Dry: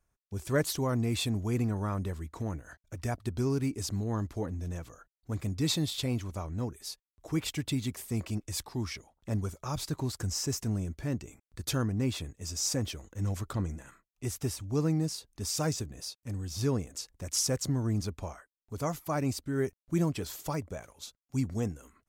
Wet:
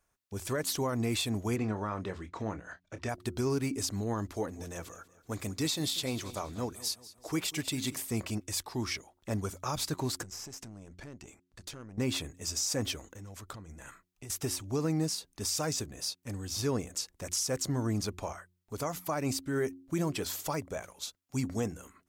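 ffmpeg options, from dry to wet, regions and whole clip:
ffmpeg -i in.wav -filter_complex "[0:a]asettb=1/sr,asplit=3[link_01][link_02][link_03];[link_01]atrim=end=1.564[link_04];[link_02]atrim=start=1.56:end=3.09,asetpts=PTS-STARTPTS,afade=type=in:duration=0.004:curve=qsin,afade=type=out:start_time=1.526:duration=0.004:curve=qsin,lowpass=4500,lowshelf=frequency=69:gain=-9,asplit=2[link_05][link_06];[link_06]adelay=28,volume=-11.5dB[link_07];[link_05][link_07]amix=inputs=2:normalize=0,atrim=end_sample=67473[link_08];[link_03]atrim=start=3.086[link_09];[link_04][link_08]acrossfade=duration=0.004:curve1=hsin:curve2=qsin[link_10];[link_10][link_09]acrossfade=duration=0.004:curve1=qsin:curve2=hsin,asettb=1/sr,asplit=3[link_11][link_12][link_13];[link_11]atrim=end=4.344[link_14];[link_12]atrim=start=4.34:end=7.98,asetpts=PTS-STARTPTS,afade=type=in:duration=0.004:curve=qsin,afade=type=out:start_time=3.636:duration=0.004:curve=qsin,bass=frequency=250:gain=-3,treble=frequency=4000:gain=3,aecho=1:1:191|382|573|764:0.126|0.0567|0.0255|0.0115,atrim=end_sample=160524[link_15];[link_13]atrim=start=7.976[link_16];[link_14][link_15]acrossfade=duration=0.004:curve1=hsin:curve2=qsin[link_17];[link_17][link_16]acrossfade=duration=0.004:curve1=qsin:curve2=hsin,asettb=1/sr,asplit=3[link_18][link_19][link_20];[link_18]atrim=end=10.234[link_21];[link_19]atrim=start=10.23:end=11.98,asetpts=PTS-STARTPTS,afade=type=in:duration=0.004:curve=qsin,afade=type=out:start_time=1.746:duration=0.004:curve=qsin,lowpass=8700,acompressor=threshold=-39dB:ratio=16:attack=3.2:release=140:knee=1:detection=peak,aeval=exprs='(tanh(70.8*val(0)+0.7)-tanh(0.7))/70.8':channel_layout=same[link_22];[link_20]atrim=start=11.976[link_23];[link_21][link_22]acrossfade=duration=0.004:curve1=hsin:curve2=qsin[link_24];[link_24][link_23]acrossfade=duration=0.004:curve1=qsin:curve2=hsin,asettb=1/sr,asplit=3[link_25][link_26][link_27];[link_25]atrim=end=13.124[link_28];[link_26]atrim=start=13.12:end=14.3,asetpts=PTS-STARTPTS,afade=type=in:duration=0.004:curve=qsin,afade=type=out:start_time=1.176:duration=0.004:curve=qsin,asubboost=boost=4:cutoff=170,acompressor=threshold=-42dB:ratio=6:attack=3.2:release=140:knee=1:detection=peak[link_29];[link_27]atrim=start=14.296[link_30];[link_28][link_29]acrossfade=duration=0.004:curve1=hsin:curve2=qsin[link_31];[link_31][link_30]acrossfade=duration=0.004:curve1=qsin:curve2=hsin,lowshelf=frequency=230:gain=-10,bandreject=frequency=89.75:width_type=h:width=4,bandreject=frequency=179.5:width_type=h:width=4,bandreject=frequency=269.25:width_type=h:width=4,bandreject=frequency=359:width_type=h:width=4,alimiter=level_in=3dB:limit=-24dB:level=0:latency=1:release=109,volume=-3dB,volume=5dB" out.wav

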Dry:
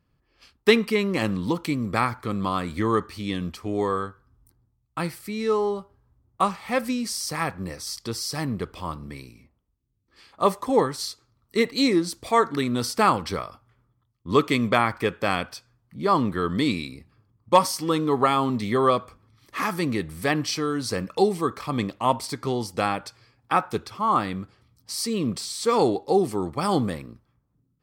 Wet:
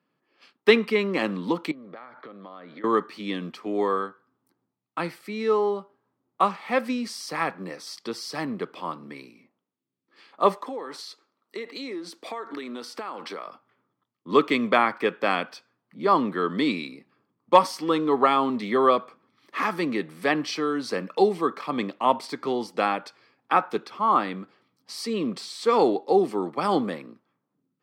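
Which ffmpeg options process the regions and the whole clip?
ffmpeg -i in.wav -filter_complex "[0:a]asettb=1/sr,asplit=3[link_01][link_02][link_03];[link_01]atrim=end=1.714[link_04];[link_02]atrim=start=1.71:end=2.84,asetpts=PTS-STARTPTS,afade=type=in:duration=0.004:curve=qsin,afade=type=out:start_time=1.126:duration=0.004:curve=qsin,highpass=150,equalizer=frequency=220:width_type=q:width=4:gain=-6,equalizer=frequency=360:width_type=q:width=4:gain=-4,equalizer=frequency=600:width_type=q:width=4:gain=6,equalizer=frequency=990:width_type=q:width=4:gain=-5,equalizer=frequency=2600:width_type=q:width=4:gain=-9,lowpass=frequency=3800:width=0.5412,lowpass=frequency=3800:width=1.3066,acompressor=threshold=-37dB:ratio=20:attack=3.2:release=140:knee=1:detection=peak[link_05];[link_03]atrim=start=2.836[link_06];[link_04][link_05]acrossfade=duration=0.004:curve1=hsin:curve2=qsin[link_07];[link_07][link_06]acrossfade=duration=0.004:curve1=qsin:curve2=hsin,asettb=1/sr,asplit=3[link_08][link_09][link_10];[link_08]atrim=end=10.564[link_11];[link_09]atrim=start=10.56:end=13.46,asetpts=PTS-STARTPTS,afade=type=in:duration=0.004:curve=qsin,afade=type=out:start_time=2.896:duration=0.004:curve=qsin,highpass=270,acompressor=threshold=-30dB:ratio=12:attack=3.2:release=140:knee=1:detection=peak[link_12];[link_10]atrim=start=13.456[link_13];[link_11][link_12]acrossfade=duration=0.004:curve1=hsin:curve2=qsin[link_14];[link_14][link_13]acrossfade=duration=0.004:curve1=qsin:curve2=hsin,highpass=frequency=140:width=0.5412,highpass=frequency=140:width=1.3066,acrossover=split=190 4300:gain=0.112 1 0.224[link_15][link_16][link_17];[link_15][link_16][link_17]amix=inputs=3:normalize=0,volume=1dB" out.wav

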